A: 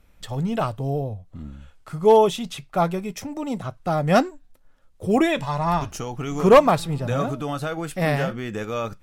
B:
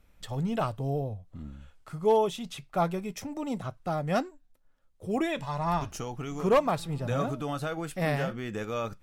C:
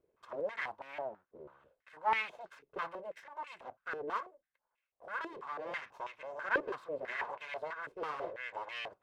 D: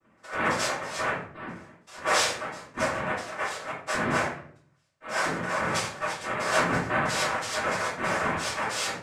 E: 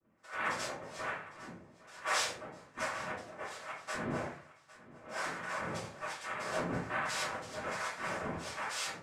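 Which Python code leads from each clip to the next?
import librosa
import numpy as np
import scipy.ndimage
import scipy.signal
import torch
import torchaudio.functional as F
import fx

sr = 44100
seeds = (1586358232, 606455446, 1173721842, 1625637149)

y1 = fx.rider(x, sr, range_db=3, speed_s=0.5)
y1 = F.gain(torch.from_numpy(y1), -8.0).numpy()
y2 = fx.lower_of_two(y1, sr, delay_ms=1.9)
y2 = np.abs(y2)
y2 = fx.filter_held_bandpass(y2, sr, hz=6.1, low_hz=420.0, high_hz=2400.0)
y2 = F.gain(torch.from_numpy(y2), 5.5).numpy()
y3 = 10.0 ** (-33.5 / 20.0) * np.tanh(y2 / 10.0 ** (-33.5 / 20.0))
y3 = fx.noise_vocoder(y3, sr, seeds[0], bands=3)
y3 = fx.room_shoebox(y3, sr, seeds[1], volume_m3=60.0, walls='mixed', distance_m=2.6)
y3 = F.gain(torch.from_numpy(y3), 3.0).numpy()
y4 = fx.echo_feedback(y3, sr, ms=806, feedback_pct=30, wet_db=-19)
y4 = fx.harmonic_tremolo(y4, sr, hz=1.2, depth_pct=70, crossover_hz=710.0)
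y4 = F.gain(torch.from_numpy(y4), -7.0).numpy()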